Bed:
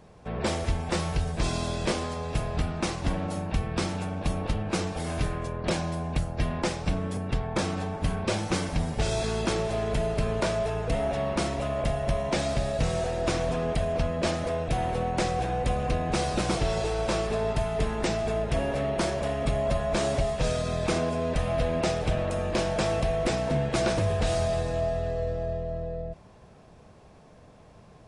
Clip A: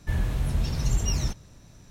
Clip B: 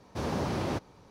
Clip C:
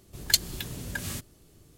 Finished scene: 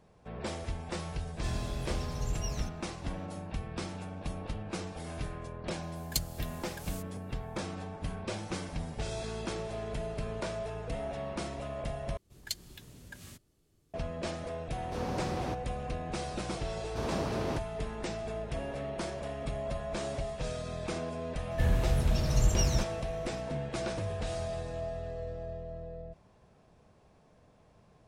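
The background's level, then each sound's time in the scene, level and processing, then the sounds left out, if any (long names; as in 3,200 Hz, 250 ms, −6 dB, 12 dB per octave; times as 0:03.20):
bed −9.5 dB
0:01.36: mix in A −10 dB
0:05.82: mix in C −17 dB + spectral tilt +2.5 dB per octave
0:12.17: overwrite with C −14 dB + high-shelf EQ 11,000 Hz −6 dB
0:14.76: mix in B −5.5 dB
0:16.80: mix in B −3.5 dB
0:21.51: mix in A −1.5 dB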